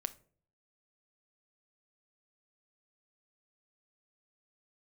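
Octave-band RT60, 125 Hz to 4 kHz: 0.75, 0.65, 0.60, 0.40, 0.35, 0.25 s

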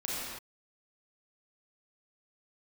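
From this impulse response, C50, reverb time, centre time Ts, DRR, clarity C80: -4.0 dB, not exponential, 0.12 s, -7.5 dB, -1.5 dB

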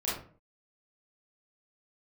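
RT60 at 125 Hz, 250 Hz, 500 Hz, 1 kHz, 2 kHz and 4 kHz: 0.45, 0.50, 0.50, 0.40, 0.35, 0.25 s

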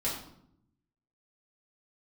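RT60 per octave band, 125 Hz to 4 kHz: 1.2, 1.1, 0.75, 0.65, 0.55, 0.50 s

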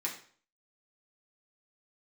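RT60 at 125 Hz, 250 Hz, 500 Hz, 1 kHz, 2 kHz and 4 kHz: 0.50, 0.45, 0.50, 0.45, 0.45, 0.45 s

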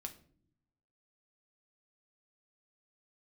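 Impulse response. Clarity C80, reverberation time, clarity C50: 18.5 dB, not exponential, 14.0 dB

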